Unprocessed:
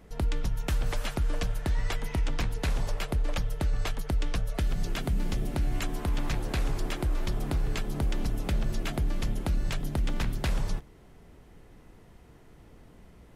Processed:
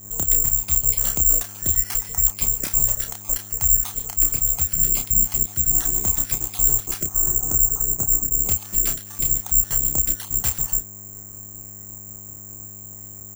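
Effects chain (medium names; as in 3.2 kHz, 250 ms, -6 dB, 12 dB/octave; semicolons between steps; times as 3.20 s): random holes in the spectrogram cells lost 37%; 7.03–8.41 s: low-pass 1.7 kHz 24 dB/octave; mains buzz 100 Hz, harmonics 24, -47 dBFS -8 dB/octave; crossover distortion -58.5 dBFS; doubling 30 ms -5 dB; careless resampling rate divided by 6×, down none, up zero stuff; trim -1 dB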